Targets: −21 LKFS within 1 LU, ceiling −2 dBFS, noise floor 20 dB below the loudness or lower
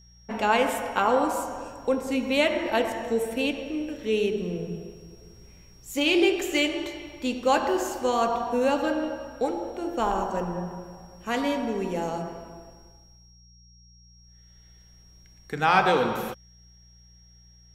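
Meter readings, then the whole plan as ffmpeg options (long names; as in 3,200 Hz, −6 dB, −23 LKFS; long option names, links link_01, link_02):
mains hum 60 Hz; hum harmonics up to 180 Hz; level of the hum −51 dBFS; interfering tone 5,600 Hz; level of the tone −56 dBFS; integrated loudness −26.0 LKFS; sample peak −5.5 dBFS; target loudness −21.0 LKFS
→ -af "bandreject=frequency=60:width_type=h:width=4,bandreject=frequency=120:width_type=h:width=4,bandreject=frequency=180:width_type=h:width=4"
-af "bandreject=frequency=5600:width=30"
-af "volume=5dB,alimiter=limit=-2dB:level=0:latency=1"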